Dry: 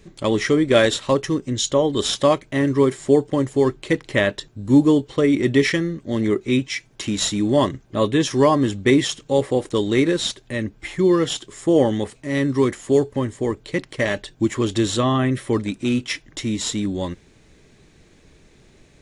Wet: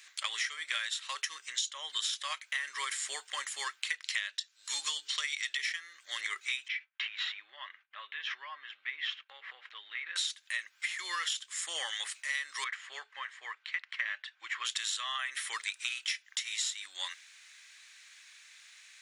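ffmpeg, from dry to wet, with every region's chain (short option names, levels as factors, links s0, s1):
-filter_complex "[0:a]asettb=1/sr,asplit=3[s0][s1][s2];[s0]atrim=end=4.024[s3];[s1]atrim=start=4.02:end=5.57,asetpts=PTS-STARTPTS,afade=t=in:d=0.004:c=qsin,afade=t=out:st=1.546:d=0.004:c=qsin,equalizer=f=5100:w=0.69:g=10.5,bandreject=f=60:t=h:w=6,bandreject=f=120:t=h:w=6,bandreject=f=180:t=h:w=6,bandreject=f=240:t=h:w=6,bandreject=f=300:t=h:w=6,bandreject=f=360:t=h:w=6,bandreject=f=420:t=h:w=6,bandreject=f=480:t=h:w=6[s4];[s2]atrim=start=5.566[s5];[s3][s4]acrossfade=d=0.004:c1=hsin:c2=qsin[s6];[s6][s5]acrossfade=d=0.004:c1=qsin:c2=hsin,asettb=1/sr,asplit=3[s7][s8][s9];[s7]atrim=end=6.684[s10];[s8]atrim=start=6.68:end=10.16,asetpts=PTS-STARTPTS,afade=t=in:d=0.004:c=qsin,afade=t=out:st=3.476:d=0.004:c=qsin,lowpass=f=2900:w=0.5412,lowpass=f=2900:w=1.3066,agate=range=0.0224:threshold=0.00708:ratio=3:release=100:detection=peak,acompressor=threshold=0.0282:ratio=4:attack=3.2:release=140:knee=1:detection=peak[s11];[s9]atrim=start=10.156[s12];[s10][s11]acrossfade=d=0.004:c1=hsin:c2=qsin[s13];[s13][s12]acrossfade=d=0.004:c1=qsin:c2=hsin,asettb=1/sr,asplit=3[s14][s15][s16];[s14]atrim=end=12.644[s17];[s15]atrim=start=12.64:end=14.65,asetpts=PTS-STARTPTS,afade=t=in:d=0.004:c=qsin,afade=t=out:st=2.006:d=0.004:c=qsin,lowpass=2200,lowshelf=f=390:g=-10.5[s18];[s16]atrim=start=14.646[s19];[s17][s18]acrossfade=d=0.004:c1=hsin:c2=qsin[s20];[s20][s19]acrossfade=d=0.004:c1=qsin:c2=hsin,highpass=f=1500:w=0.5412,highpass=f=1500:w=1.3066,acompressor=threshold=0.0158:ratio=16,volume=1.78"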